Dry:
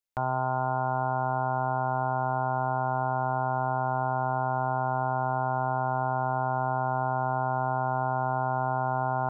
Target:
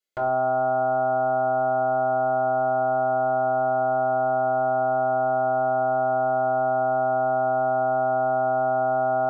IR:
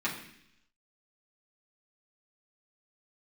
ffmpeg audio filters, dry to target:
-filter_complex "[1:a]atrim=start_sample=2205,afade=t=out:st=0.32:d=0.01,atrim=end_sample=14553,asetrate=79380,aresample=44100[a];[0:a][a]afir=irnorm=-1:irlink=0,volume=3dB"

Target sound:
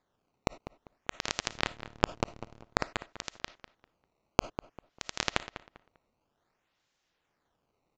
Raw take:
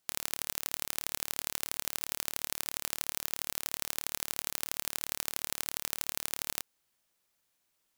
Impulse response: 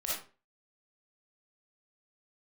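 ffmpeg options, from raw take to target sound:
-filter_complex "[0:a]asettb=1/sr,asplit=3[a][b][c];[a]atrim=end=1.474[d];[b]atrim=start=1.47:end=2.61,asetpts=PTS-STARTPTS,afade=t=in:d=0.004:c=qsin,afade=t=out:st=1.136:d=0.004:c=qsin,lowshelf=f=240:g=9.5[e];[c]atrim=start=2.606[f];[d][e]acrossfade=d=0.004:c1=hsin:c2=qsin[g];[g][f]acrossfade=d=0.004:c1=qsin:c2=hsin,acrusher=samples=15:mix=1:aa=0.000001:lfo=1:lforange=24:lforate=0.54,asplit=2[h][i];[i]adelay=198,lowpass=f=2.5k:p=1,volume=-12dB,asplit=2[j][k];[k]adelay=198,lowpass=f=2.5k:p=1,volume=0.28,asplit=2[l][m];[m]adelay=198,lowpass=f=2.5k:p=1,volume=0.28[n];[h][j][l][n]amix=inputs=4:normalize=0,asplit=2[o][p];[1:a]atrim=start_sample=2205,afade=t=out:st=0.15:d=0.01,atrim=end_sample=7056[q];[p][q]afir=irnorm=-1:irlink=0,volume=-19.5dB[r];[o][r]amix=inputs=2:normalize=0,aresample=16000,aresample=44100,volume=-2dB"

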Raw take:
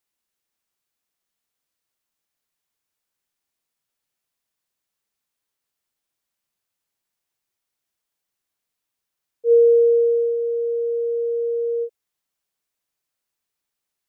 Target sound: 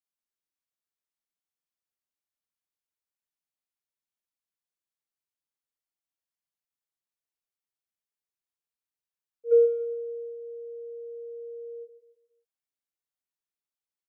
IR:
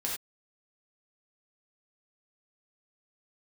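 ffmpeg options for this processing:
-af "agate=range=-13dB:threshold=-13dB:ratio=16:detection=peak,aecho=1:1:140|280|420|560:0.282|0.118|0.0497|0.0209,volume=-2dB"

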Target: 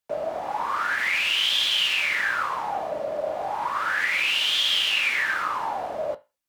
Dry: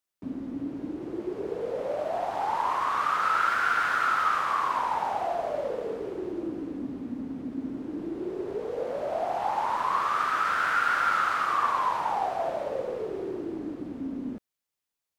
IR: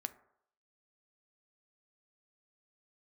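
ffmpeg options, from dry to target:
-filter_complex "[0:a]asplit=2[a][b];[b]alimiter=limit=-21.5dB:level=0:latency=1:release=138,volume=1.5dB[c];[a][c]amix=inputs=2:normalize=0[d];[1:a]atrim=start_sample=2205[e];[d][e]afir=irnorm=-1:irlink=0,asetrate=103194,aresample=44100"

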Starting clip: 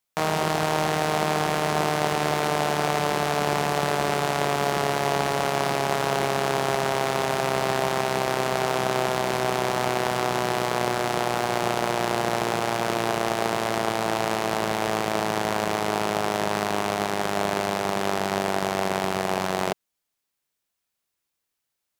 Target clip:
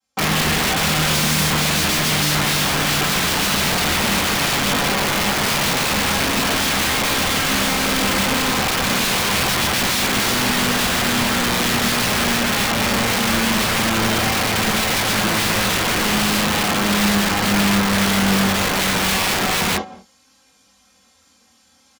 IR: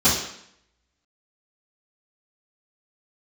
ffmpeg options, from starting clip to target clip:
-filter_complex "[0:a]lowpass=f=11k:w=0.5412,lowpass=f=11k:w=1.3066,aecho=1:1:3.8:0.73,asplit=2[a][b];[b]adelay=198.3,volume=-22dB,highshelf=f=4k:g=-4.46[c];[a][c]amix=inputs=2:normalize=0,areverse,acompressor=mode=upward:threshold=-46dB:ratio=2.5,areverse,flanger=delay=19:depth=7.3:speed=0.39,acrossover=split=4900[d][e];[e]acompressor=threshold=-47dB:ratio=4:attack=1:release=60[f];[d][f]amix=inputs=2:normalize=0[g];[1:a]atrim=start_sample=2205,atrim=end_sample=4410[h];[g][h]afir=irnorm=-1:irlink=0,acrossover=split=210|2100[i][j][k];[j]aeval=exprs='(mod(2.11*val(0)+1,2)-1)/2.11':c=same[l];[i][l][k]amix=inputs=3:normalize=0,volume=-8.5dB"

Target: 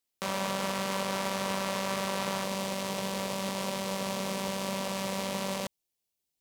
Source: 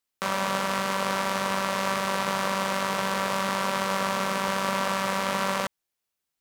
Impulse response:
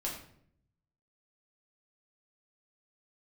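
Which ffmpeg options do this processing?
-af "alimiter=limit=-14.5dB:level=0:latency=1,asetnsamples=n=441:p=0,asendcmd='2.44 equalizer g -13.5',equalizer=f=1.4k:w=1.2:g=-7"

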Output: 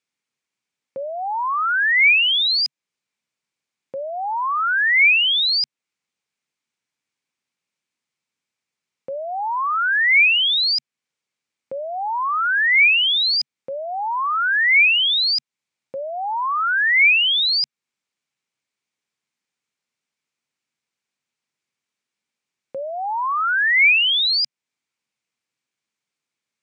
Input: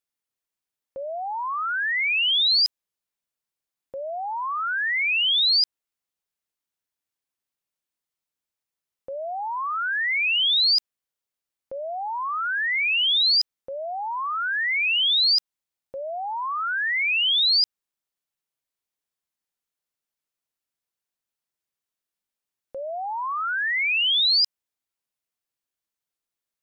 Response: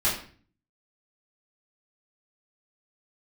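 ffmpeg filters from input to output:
-filter_complex "[0:a]asettb=1/sr,asplit=3[a][b][c];[a]atrim=end=22.864[d];[b]atrim=start=22.86:end=24.19,asetpts=PTS-STARTPTS,afade=t=in:d=0.004:c=qsin,afade=t=out:st=1.326:d=0.004:c=qsin,equalizer=f=5.4k:t=o:w=0.32:g=8[e];[c]atrim=start=24.186[f];[d][e]acrossfade=d=0.004:c1=hsin:c2=qsin[g];[g][f]acrossfade=d=0.004:c1=qsin:c2=hsin,alimiter=limit=-22dB:level=0:latency=1:release=283,highpass=120,equalizer=f=140:t=q:w=4:g=6,equalizer=f=230:t=q:w=4:g=5,equalizer=f=660:t=q:w=4:g=-4,equalizer=f=2.3k:t=q:w=4:g=7,lowpass=f=8.1k:w=0.5412,lowpass=f=8.1k:w=1.3066,volume=6dB"

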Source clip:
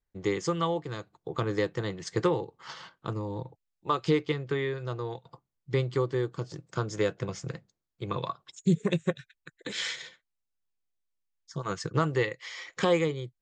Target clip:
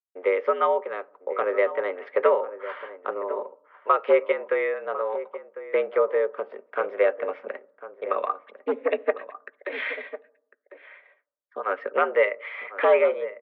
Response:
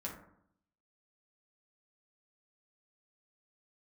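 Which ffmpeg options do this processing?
-filter_complex "[0:a]aeval=exprs='0.15*(abs(mod(val(0)/0.15+3,4)-2)-1)':c=same,highpass=f=330:t=q:w=0.5412,highpass=f=330:t=q:w=1.307,lowpass=f=2.4k:t=q:w=0.5176,lowpass=f=2.4k:t=q:w=0.7071,lowpass=f=2.4k:t=q:w=1.932,afreqshift=81,agate=range=-33dB:threshold=-54dB:ratio=3:detection=peak,asplit=2[a][b];[b]adelay=1050,volume=-13dB,highshelf=f=4k:g=-23.6[c];[a][c]amix=inputs=2:normalize=0,asplit=2[d][e];[1:a]atrim=start_sample=2205,lowpass=1.1k[f];[e][f]afir=irnorm=-1:irlink=0,volume=-14.5dB[g];[d][g]amix=inputs=2:normalize=0,volume=7.5dB"

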